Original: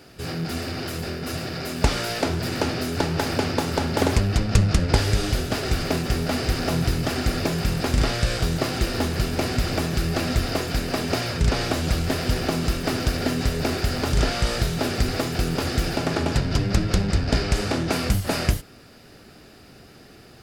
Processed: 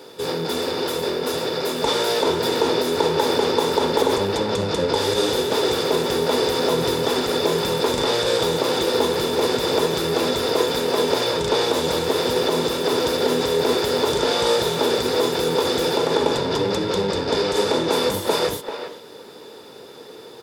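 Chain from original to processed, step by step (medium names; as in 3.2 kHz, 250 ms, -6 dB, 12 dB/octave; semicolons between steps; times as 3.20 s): Bessel high-pass 180 Hz, order 2; treble shelf 3.4 kHz +7 dB; peak limiter -15.5 dBFS, peak gain reduction 12.5 dB; small resonant body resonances 470/910/3500 Hz, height 18 dB, ringing for 25 ms; speakerphone echo 390 ms, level -8 dB; trim -2 dB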